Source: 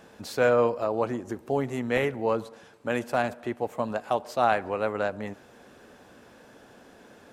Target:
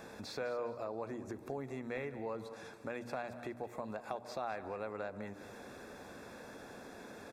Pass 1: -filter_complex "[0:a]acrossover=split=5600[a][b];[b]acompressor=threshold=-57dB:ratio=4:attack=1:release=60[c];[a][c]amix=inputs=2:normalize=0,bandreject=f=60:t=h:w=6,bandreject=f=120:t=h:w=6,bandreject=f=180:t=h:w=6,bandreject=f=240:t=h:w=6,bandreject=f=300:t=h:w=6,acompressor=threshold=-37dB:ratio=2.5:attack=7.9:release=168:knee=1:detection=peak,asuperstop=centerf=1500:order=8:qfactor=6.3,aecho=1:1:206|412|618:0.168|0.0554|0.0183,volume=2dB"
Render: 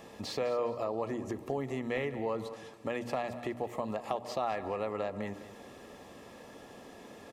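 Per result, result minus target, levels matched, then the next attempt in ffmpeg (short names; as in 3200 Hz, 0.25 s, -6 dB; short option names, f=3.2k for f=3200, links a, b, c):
compressor: peak gain reduction -7 dB; 2000 Hz band -4.0 dB
-filter_complex "[0:a]acrossover=split=5600[a][b];[b]acompressor=threshold=-57dB:ratio=4:attack=1:release=60[c];[a][c]amix=inputs=2:normalize=0,bandreject=f=60:t=h:w=6,bandreject=f=120:t=h:w=6,bandreject=f=180:t=h:w=6,bandreject=f=240:t=h:w=6,bandreject=f=300:t=h:w=6,acompressor=threshold=-48.5dB:ratio=2.5:attack=7.9:release=168:knee=1:detection=peak,asuperstop=centerf=1500:order=8:qfactor=6.3,aecho=1:1:206|412|618:0.168|0.0554|0.0183,volume=2dB"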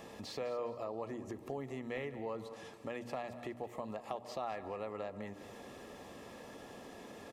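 2000 Hz band -2.5 dB
-filter_complex "[0:a]acrossover=split=5600[a][b];[b]acompressor=threshold=-57dB:ratio=4:attack=1:release=60[c];[a][c]amix=inputs=2:normalize=0,bandreject=f=60:t=h:w=6,bandreject=f=120:t=h:w=6,bandreject=f=180:t=h:w=6,bandreject=f=240:t=h:w=6,bandreject=f=300:t=h:w=6,acompressor=threshold=-48.5dB:ratio=2.5:attack=7.9:release=168:knee=1:detection=peak,asuperstop=centerf=3000:order=8:qfactor=6.3,aecho=1:1:206|412|618:0.168|0.0554|0.0183,volume=2dB"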